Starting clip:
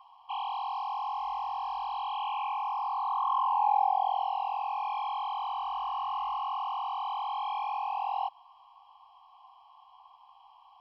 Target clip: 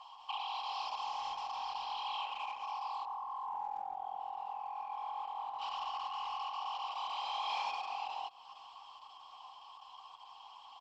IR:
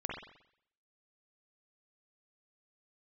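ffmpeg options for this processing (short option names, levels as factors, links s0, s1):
-filter_complex "[0:a]acompressor=threshold=0.00891:ratio=6,crystalizer=i=8:c=0,asettb=1/sr,asplit=3[s0][s1][s2];[s0]atrim=end=3.054[s3];[s1]atrim=start=3.05:end=5.59,asetpts=PTS-STARTPTS,afade=t=in:d=0.004:c=qsin,afade=t=out:st=2.536:d=0.004:c=qsin,bandpass=f=780:t=q:w=1.7:csg=0[s4];[s2]atrim=start=5.586[s5];[s3][s4]acrossfade=d=0.004:c1=hsin:c2=qsin[s6];[s6][s5]acrossfade=d=0.004:c1=qsin:c2=hsin,aecho=1:1:405|810:0.0794|0.0191,volume=0.891" -ar 48000 -c:a libopus -b:a 10k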